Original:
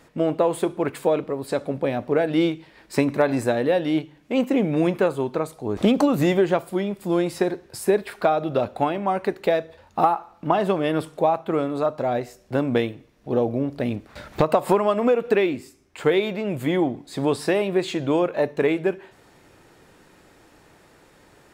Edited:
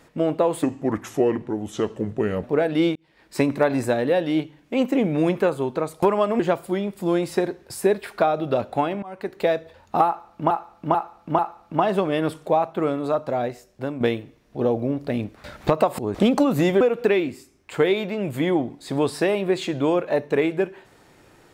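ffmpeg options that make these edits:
ffmpeg -i in.wav -filter_complex "[0:a]asplit=13[link_01][link_02][link_03][link_04][link_05][link_06][link_07][link_08][link_09][link_10][link_11][link_12][link_13];[link_01]atrim=end=0.634[link_14];[link_02]atrim=start=0.63:end=2.02,asetpts=PTS-STARTPTS,asetrate=33957,aresample=44100,atrim=end_sample=79609,asetpts=PTS-STARTPTS[link_15];[link_03]atrim=start=2.016:end=2.54,asetpts=PTS-STARTPTS,afade=type=out:start_time=0.52:duration=0.004:curve=hsin[link_16];[link_04]atrim=start=2.54:end=5.612,asetpts=PTS-STARTPTS,afade=type=in:duration=0.47[link_17];[link_05]atrim=start=14.698:end=15.072[link_18];[link_06]atrim=start=6.428:end=9.06,asetpts=PTS-STARTPTS,afade=type=out:start_time=2.628:duration=0.004:curve=hsin:silence=0.0668344[link_19];[link_07]atrim=start=9.06:end=10.542,asetpts=PTS-STARTPTS,afade=type=in:duration=0.45:silence=0.0668344[link_20];[link_08]atrim=start=10.098:end=10.542[link_21];[link_09]atrim=start=10.098:end=10.542[link_22];[link_10]atrim=start=10.098:end=12.72,asetpts=PTS-STARTPTS,afade=type=out:start_time=1.892:duration=0.73:silence=0.398107[link_23];[link_11]atrim=start=12.72:end=14.702,asetpts=PTS-STARTPTS,afade=type=in:duration=0.004:curve=hsin:silence=0.398107[link_24];[link_12]atrim=start=5.608:end=6.432[link_25];[link_13]atrim=start=15.068[link_26];[link_14][link_15]acrossfade=duration=0.004:curve1=hsin:curve2=hsin[link_27];[link_16][link_17]concat=n=2:v=0:a=1[link_28];[link_27][link_28]acrossfade=duration=0.004:curve1=hsin:curve2=hsin[link_29];[link_29][link_18]acrossfade=duration=0.004:curve1=hsin:curve2=hsin[link_30];[link_19][link_20]concat=n=2:v=0:a=1[link_31];[link_30][link_31]acrossfade=duration=0.004:curve1=hsin:curve2=hsin[link_32];[link_32][link_21]acrossfade=duration=0.004:curve1=hsin:curve2=hsin[link_33];[link_33][link_22]acrossfade=duration=0.004:curve1=hsin:curve2=hsin[link_34];[link_23][link_24]concat=n=2:v=0:a=1[link_35];[link_34][link_35]acrossfade=duration=0.004:curve1=hsin:curve2=hsin[link_36];[link_36][link_25]acrossfade=duration=0.004:curve1=hsin:curve2=hsin[link_37];[link_37][link_26]acrossfade=duration=0.004:curve1=hsin:curve2=hsin" out.wav

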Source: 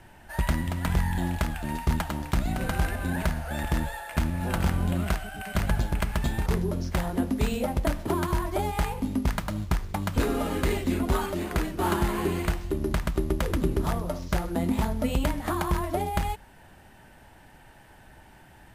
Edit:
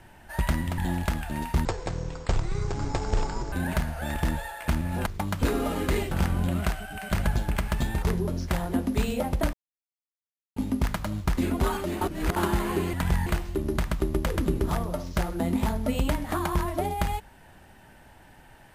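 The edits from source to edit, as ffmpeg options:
ffmpeg -i in.wav -filter_complex "[0:a]asplit=13[link_01][link_02][link_03][link_04][link_05][link_06][link_07][link_08][link_09][link_10][link_11][link_12][link_13];[link_01]atrim=end=0.782[link_14];[link_02]atrim=start=1.108:end=1.984[link_15];[link_03]atrim=start=1.98:end=3.01,asetpts=PTS-STARTPTS,asetrate=24255,aresample=44100,atrim=end_sample=82587,asetpts=PTS-STARTPTS[link_16];[link_04]atrim=start=3.006:end=4.552[link_17];[link_05]atrim=start=9.808:end=10.862[link_18];[link_06]atrim=start=4.548:end=7.97,asetpts=PTS-STARTPTS,afade=type=out:start_time=3.418:duration=0.004:curve=hsin[link_19];[link_07]atrim=start=7.97:end=9,asetpts=PTS-STARTPTS,volume=0[link_20];[link_08]atrim=start=9:end=9.812,asetpts=PTS-STARTPTS,afade=type=in:duration=0.004:curve=hsin[link_21];[link_09]atrim=start=10.858:end=11.502[link_22];[link_10]atrim=start=11.498:end=11.852,asetpts=PTS-STARTPTS,areverse[link_23];[link_11]atrim=start=11.848:end=12.422[link_24];[link_12]atrim=start=0.778:end=1.112[link_25];[link_13]atrim=start=12.418[link_26];[link_14][link_15]acrossfade=duration=0.004:curve1=hsin:curve2=hsin[link_27];[link_27][link_16]acrossfade=duration=0.004:curve1=hsin:curve2=hsin[link_28];[link_28][link_17]acrossfade=duration=0.004:curve1=hsin:curve2=hsin[link_29];[link_29][link_18]acrossfade=duration=0.004:curve1=hsin:curve2=hsin[link_30];[link_19][link_20][link_21]concat=n=3:v=0:a=1[link_31];[link_30][link_31]acrossfade=duration=0.004:curve1=hsin:curve2=hsin[link_32];[link_32][link_22]acrossfade=duration=0.004:curve1=hsin:curve2=hsin[link_33];[link_33][link_23]acrossfade=duration=0.004:curve1=hsin:curve2=hsin[link_34];[link_34][link_24]acrossfade=duration=0.004:curve1=hsin:curve2=hsin[link_35];[link_35][link_25]acrossfade=duration=0.004:curve1=hsin:curve2=hsin[link_36];[link_36][link_26]acrossfade=duration=0.004:curve1=hsin:curve2=hsin" out.wav

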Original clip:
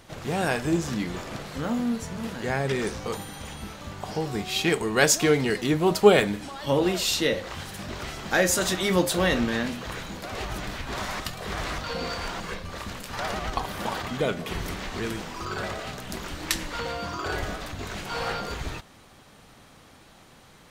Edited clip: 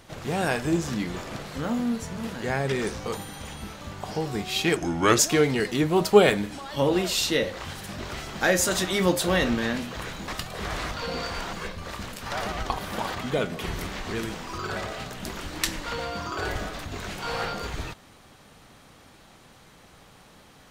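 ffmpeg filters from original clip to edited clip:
ffmpeg -i in.wav -filter_complex "[0:a]asplit=4[link_01][link_02][link_03][link_04];[link_01]atrim=end=4.764[link_05];[link_02]atrim=start=4.76:end=5.09,asetpts=PTS-STARTPTS,asetrate=33957,aresample=44100[link_06];[link_03]atrim=start=5.086:end=10.182[link_07];[link_04]atrim=start=11.148[link_08];[link_05][link_06]acrossfade=duration=0.004:curve1=hsin:curve2=hsin[link_09];[link_09][link_07]acrossfade=duration=0.004:curve1=hsin:curve2=hsin[link_10];[link_10][link_08]acrossfade=duration=0.004:curve1=hsin:curve2=hsin" out.wav

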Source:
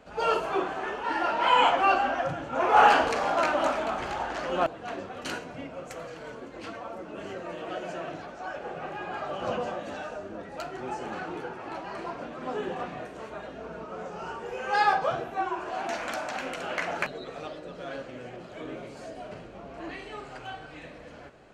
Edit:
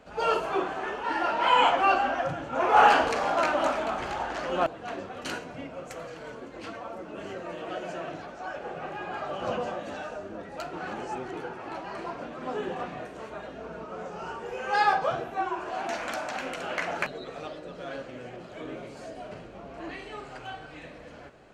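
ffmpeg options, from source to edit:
ffmpeg -i in.wav -filter_complex "[0:a]asplit=3[link_01][link_02][link_03];[link_01]atrim=end=10.732[link_04];[link_02]atrim=start=10.728:end=11.332,asetpts=PTS-STARTPTS,areverse[link_05];[link_03]atrim=start=11.328[link_06];[link_04][link_05]acrossfade=duration=0.004:curve1=hsin:curve2=hsin[link_07];[link_07][link_06]acrossfade=duration=0.004:curve1=hsin:curve2=hsin" out.wav

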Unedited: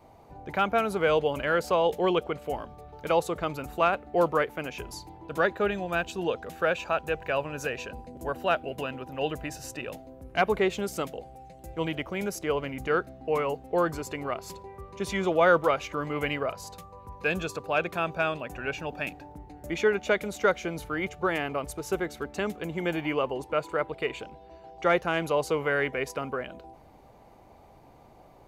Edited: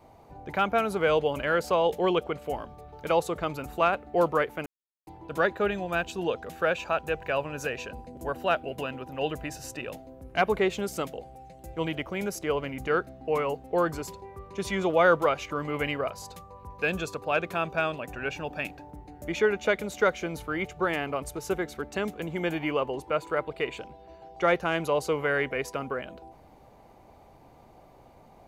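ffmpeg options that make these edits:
ffmpeg -i in.wav -filter_complex "[0:a]asplit=4[link_01][link_02][link_03][link_04];[link_01]atrim=end=4.66,asetpts=PTS-STARTPTS,afade=type=out:start_time=4.656:duration=0.004:curve=hsin[link_05];[link_02]atrim=start=4.66:end=5.07,asetpts=PTS-STARTPTS,volume=0[link_06];[link_03]atrim=start=5.07:end=14.072,asetpts=PTS-STARTPTS,afade=type=in:duration=0.004:curve=hsin[link_07];[link_04]atrim=start=14.488[link_08];[link_05][link_06][link_07]concat=n=3:v=0:a=1[link_09];[link_09][link_08]acrossfade=duration=0.004:curve1=hsin:curve2=hsin" out.wav

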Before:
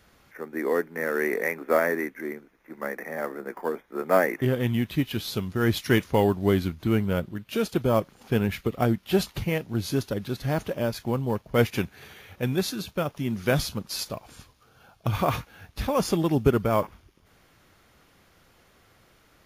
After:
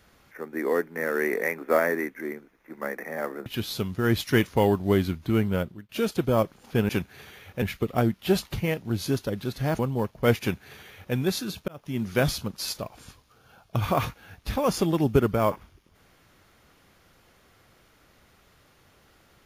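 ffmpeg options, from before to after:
ffmpeg -i in.wav -filter_complex "[0:a]asplit=7[link_01][link_02][link_03][link_04][link_05][link_06][link_07];[link_01]atrim=end=3.462[link_08];[link_02]atrim=start=5.028:end=7.46,asetpts=PTS-STARTPTS,afade=type=out:start_time=2.102:duration=0.33:silence=0.11885[link_09];[link_03]atrim=start=7.46:end=8.462,asetpts=PTS-STARTPTS,afade=type=in:duration=0.004:curve=hsin:silence=0.11885[link_10];[link_04]atrim=start=11.718:end=12.452[link_11];[link_05]atrim=start=8.458:end=10.632[link_12];[link_06]atrim=start=11.098:end=12.99,asetpts=PTS-STARTPTS,afade=type=out:start_time=1.888:duration=0.004:curve=hsin[link_13];[link_07]atrim=start=12.99,asetpts=PTS-STARTPTS,afade=type=in:duration=0.31[link_14];[link_09][link_10]concat=n=2:v=0:a=1[link_15];[link_08][link_15]acrossfade=duration=0.004:curve1=hsin:curve2=hsin[link_16];[link_16][link_11]acrossfade=duration=0.004:curve1=hsin:curve2=hsin[link_17];[link_17][link_12]acrossfade=duration=0.004:curve1=hsin:curve2=hsin[link_18];[link_13][link_14]concat=n=2:v=0:a=1[link_19];[link_18][link_19]acrossfade=duration=0.004:curve1=hsin:curve2=hsin" out.wav

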